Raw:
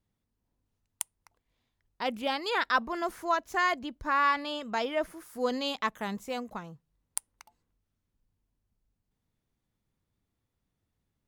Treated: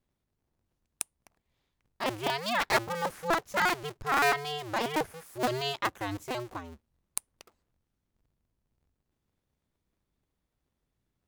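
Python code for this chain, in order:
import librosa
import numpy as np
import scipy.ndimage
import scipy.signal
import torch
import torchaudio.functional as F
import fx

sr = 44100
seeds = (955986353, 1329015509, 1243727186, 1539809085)

y = fx.cycle_switch(x, sr, every=2, mode='inverted')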